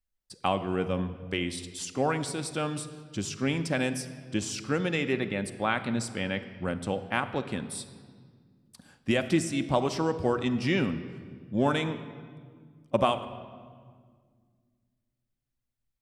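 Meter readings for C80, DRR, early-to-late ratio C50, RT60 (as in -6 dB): 13.5 dB, 9.0 dB, 12.0 dB, 1.8 s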